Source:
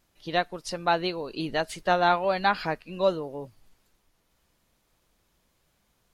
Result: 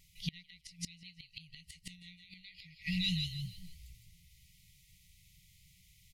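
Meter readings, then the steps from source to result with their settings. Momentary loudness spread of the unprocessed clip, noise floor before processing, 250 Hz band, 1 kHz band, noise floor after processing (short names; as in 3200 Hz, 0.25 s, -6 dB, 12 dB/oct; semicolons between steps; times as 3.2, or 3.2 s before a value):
11 LU, -71 dBFS, -8.5 dB, under -40 dB, -66 dBFS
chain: frequency-shifting echo 0.159 s, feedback 34%, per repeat +54 Hz, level -4.5 dB; FFT band-reject 190–1900 Hz; flipped gate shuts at -28 dBFS, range -27 dB; gain +6.5 dB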